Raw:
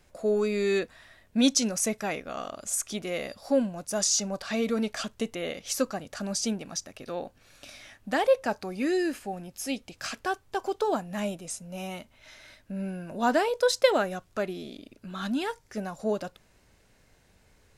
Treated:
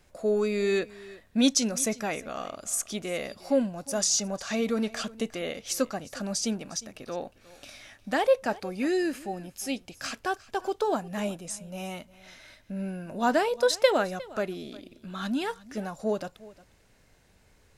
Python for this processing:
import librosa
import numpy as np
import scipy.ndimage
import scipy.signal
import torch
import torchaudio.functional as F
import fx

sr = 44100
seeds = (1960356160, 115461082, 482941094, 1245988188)

y = x + 10.0 ** (-20.0 / 20.0) * np.pad(x, (int(357 * sr / 1000.0), 0))[:len(x)]